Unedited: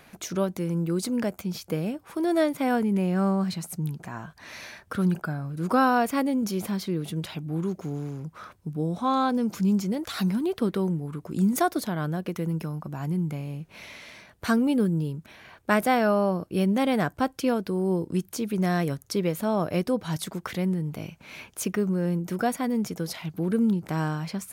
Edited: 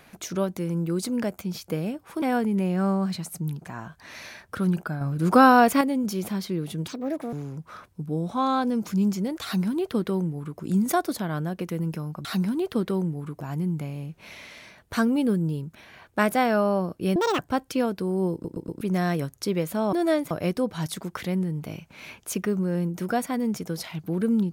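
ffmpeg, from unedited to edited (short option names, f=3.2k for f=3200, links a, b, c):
-filter_complex "[0:a]asplit=16[a][b][c][d][e][f][g][h][i][j][k][l][m][n][o][p];[a]atrim=end=2.222[q];[b]atrim=start=2.598:end=5.392[r];[c]atrim=start=5.388:end=6.192,asetpts=PTS-STARTPTS,volume=6dB[s];[d]atrim=start=6.188:end=7.254[t];[e]atrim=start=7.25:end=8,asetpts=PTS-STARTPTS,asetrate=72324,aresample=44100[u];[f]atrim=start=7.996:end=12.922[v];[g]atrim=start=10.108:end=11.272[w];[h]atrim=start=12.918:end=16.674[x];[i]atrim=start=16.67:end=17.07,asetpts=PTS-STARTPTS,asetrate=76734,aresample=44100[y];[j]atrim=start=17.066:end=18.132[z];[k]atrim=start=18.008:end=18.132[aa];[l]atrim=start=18.008:end=18.132[ab];[m]atrim=start=18.008:end=18.132[ac];[n]atrim=start=18.488:end=19.612[ad];[o]atrim=start=2.218:end=2.602[ae];[p]atrim=start=19.608[af];[q][r]acrossfade=d=0.004:c1=hsin:c2=hsin[ag];[ag][s]acrossfade=d=0.004:c1=hsin:c2=hsin[ah];[ah][t]acrossfade=d=0.004:c1=hsin:c2=hsin[ai];[ai][u]acrossfade=d=0.004:c1=hsin:c2=hsin[aj];[aj][v]acrossfade=d=0.004:c1=hsin:c2=hsin[ak];[ak][w]acrossfade=d=0.004:c1=hsin:c2=hsin[al];[al][x]acrossfade=d=0.004:c1=hsin:c2=hsin[am];[am][y]acrossfade=d=0.004:c1=hsin:c2=hsin[an];[an][z]acrossfade=d=0.004:c1=hsin:c2=hsin[ao];[ao][aa]acrossfade=d=0.004:c1=hsin:c2=hsin[ap];[ap][ab]acrossfade=d=0.004:c1=hsin:c2=hsin[aq];[aq][ac]acrossfade=d=0.004:c1=hsin:c2=hsin[ar];[ar][ad]acrossfade=d=0.004:c1=hsin:c2=hsin[as];[as][ae]acrossfade=d=0.004:c1=hsin:c2=hsin[at];[at][af]acrossfade=d=0.004:c1=hsin:c2=hsin"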